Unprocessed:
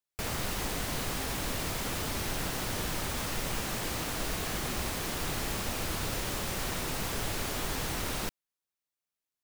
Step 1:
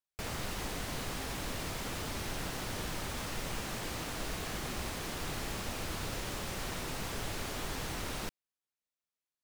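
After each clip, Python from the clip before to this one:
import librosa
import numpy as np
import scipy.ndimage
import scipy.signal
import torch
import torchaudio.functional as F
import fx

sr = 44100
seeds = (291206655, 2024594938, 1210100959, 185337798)

y = fx.high_shelf(x, sr, hz=11000.0, db=-7.0)
y = y * librosa.db_to_amplitude(-4.0)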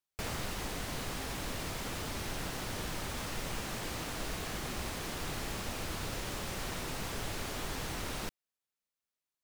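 y = fx.rider(x, sr, range_db=10, speed_s=0.5)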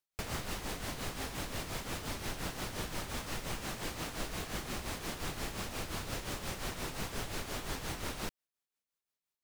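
y = x * (1.0 - 0.6 / 2.0 + 0.6 / 2.0 * np.cos(2.0 * np.pi * 5.7 * (np.arange(len(x)) / sr)))
y = y * librosa.db_to_amplitude(1.5)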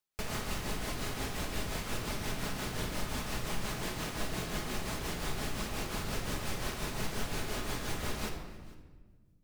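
y = x + 10.0 ** (-22.5 / 20.0) * np.pad(x, (int(453 * sr / 1000.0), 0))[:len(x)]
y = fx.room_shoebox(y, sr, seeds[0], volume_m3=1300.0, walls='mixed', distance_m=1.4)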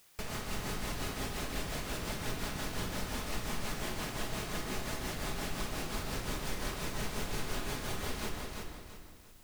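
y = fx.echo_feedback(x, sr, ms=340, feedback_pct=33, wet_db=-4)
y = fx.quant_dither(y, sr, seeds[1], bits=10, dither='triangular')
y = y * librosa.db_to_amplitude(-2.5)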